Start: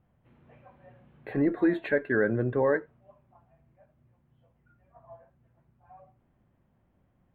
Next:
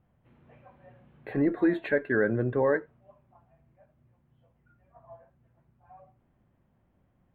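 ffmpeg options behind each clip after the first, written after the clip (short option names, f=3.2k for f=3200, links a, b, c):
-af anull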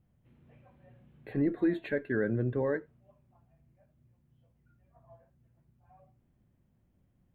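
-af "equalizer=f=1k:w=0.5:g=-10"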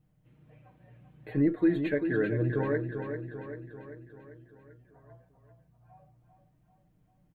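-filter_complex "[0:a]aecho=1:1:6.5:0.68,asplit=2[a][b];[b]aecho=0:1:392|784|1176|1568|1960|2352|2744:0.422|0.236|0.132|0.0741|0.0415|0.0232|0.013[c];[a][c]amix=inputs=2:normalize=0"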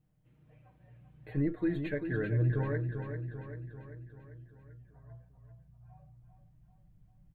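-af "asubboost=boost=6.5:cutoff=130,volume=-4.5dB"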